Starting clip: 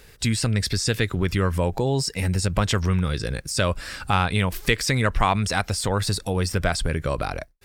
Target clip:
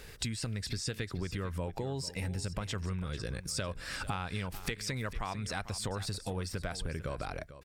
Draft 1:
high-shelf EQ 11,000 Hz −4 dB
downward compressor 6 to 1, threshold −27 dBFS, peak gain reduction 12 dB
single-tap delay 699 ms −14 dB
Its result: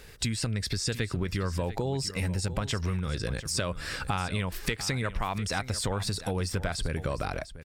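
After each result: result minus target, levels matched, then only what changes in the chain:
echo 253 ms late; downward compressor: peak gain reduction −6 dB
change: single-tap delay 446 ms −14 dB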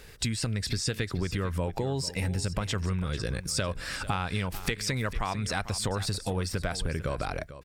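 downward compressor: peak gain reduction −6 dB
change: downward compressor 6 to 1, threshold −34.5 dBFS, peak gain reduction 18.5 dB

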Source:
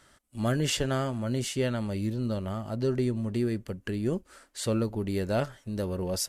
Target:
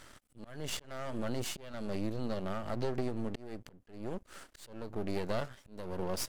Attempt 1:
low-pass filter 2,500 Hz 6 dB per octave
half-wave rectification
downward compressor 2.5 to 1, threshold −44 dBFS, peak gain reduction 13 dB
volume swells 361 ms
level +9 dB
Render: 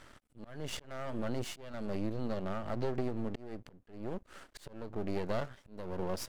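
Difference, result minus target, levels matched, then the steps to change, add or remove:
8,000 Hz band −5.0 dB
change: low-pass filter 9,100 Hz 6 dB per octave

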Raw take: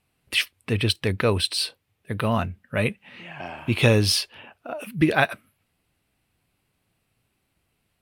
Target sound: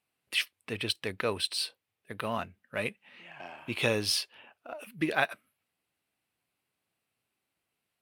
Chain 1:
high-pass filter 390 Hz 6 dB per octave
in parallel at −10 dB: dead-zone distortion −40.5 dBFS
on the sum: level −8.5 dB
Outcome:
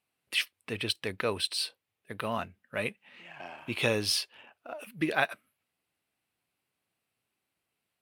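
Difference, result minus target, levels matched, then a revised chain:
dead-zone distortion: distortion −6 dB
high-pass filter 390 Hz 6 dB per octave
in parallel at −10 dB: dead-zone distortion −33.5 dBFS
on the sum: level −8.5 dB

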